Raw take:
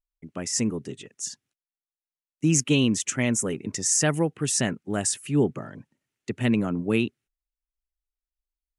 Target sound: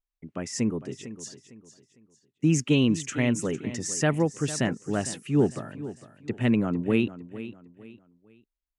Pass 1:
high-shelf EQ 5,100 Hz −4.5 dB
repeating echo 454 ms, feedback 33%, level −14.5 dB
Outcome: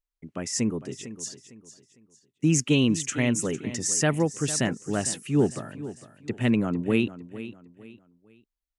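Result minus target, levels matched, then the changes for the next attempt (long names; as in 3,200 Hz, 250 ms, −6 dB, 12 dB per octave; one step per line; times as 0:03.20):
8,000 Hz band +5.0 dB
change: high-shelf EQ 5,100 Hz −13 dB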